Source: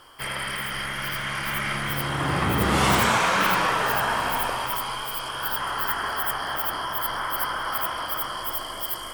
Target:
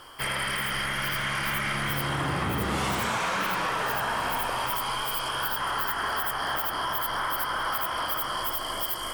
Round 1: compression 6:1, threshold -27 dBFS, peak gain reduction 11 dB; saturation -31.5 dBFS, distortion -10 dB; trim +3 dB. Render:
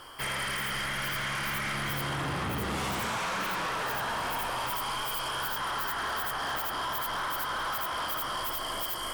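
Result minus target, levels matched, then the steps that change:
saturation: distortion +12 dB
change: saturation -21 dBFS, distortion -22 dB

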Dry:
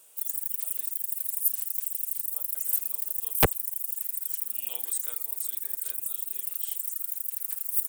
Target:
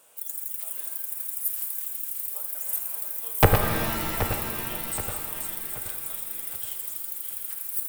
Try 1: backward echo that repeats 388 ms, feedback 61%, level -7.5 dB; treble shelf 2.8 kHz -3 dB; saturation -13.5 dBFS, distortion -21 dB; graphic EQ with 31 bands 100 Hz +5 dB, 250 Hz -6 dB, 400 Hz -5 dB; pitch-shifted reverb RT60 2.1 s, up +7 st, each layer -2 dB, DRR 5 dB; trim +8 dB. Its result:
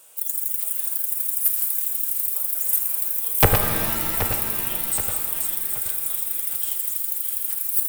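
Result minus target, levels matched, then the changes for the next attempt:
2 kHz band -5.5 dB
change: treble shelf 2.8 kHz -11.5 dB

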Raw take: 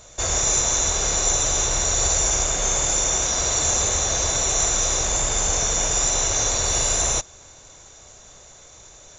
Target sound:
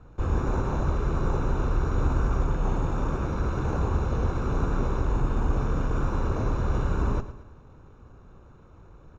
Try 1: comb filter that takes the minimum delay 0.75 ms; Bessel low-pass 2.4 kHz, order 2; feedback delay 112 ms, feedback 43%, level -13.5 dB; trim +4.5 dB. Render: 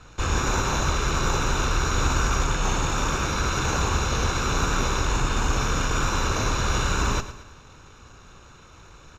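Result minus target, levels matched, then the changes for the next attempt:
2 kHz band +9.5 dB
change: Bessel low-pass 600 Hz, order 2

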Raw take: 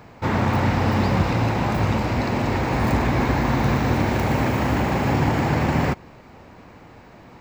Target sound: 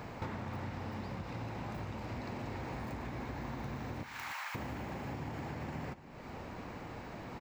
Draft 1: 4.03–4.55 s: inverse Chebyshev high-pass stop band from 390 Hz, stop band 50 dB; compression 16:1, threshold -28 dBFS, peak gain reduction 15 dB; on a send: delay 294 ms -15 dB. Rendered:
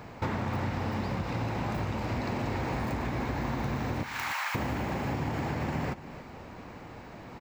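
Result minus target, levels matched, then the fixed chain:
compression: peak gain reduction -9.5 dB
4.03–4.55 s: inverse Chebyshev high-pass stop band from 390 Hz, stop band 50 dB; compression 16:1, threshold -38 dBFS, peak gain reduction 24.5 dB; on a send: delay 294 ms -15 dB

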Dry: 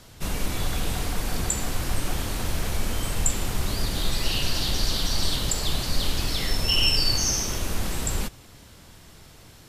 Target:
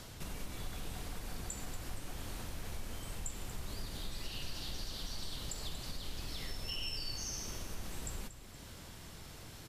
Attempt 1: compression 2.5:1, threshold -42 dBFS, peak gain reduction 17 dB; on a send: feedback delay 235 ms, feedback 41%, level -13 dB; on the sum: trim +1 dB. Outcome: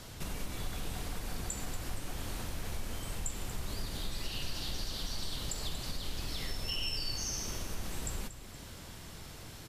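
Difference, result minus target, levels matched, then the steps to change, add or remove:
compression: peak gain reduction -4 dB
change: compression 2.5:1, threshold -49 dBFS, peak gain reduction 21 dB

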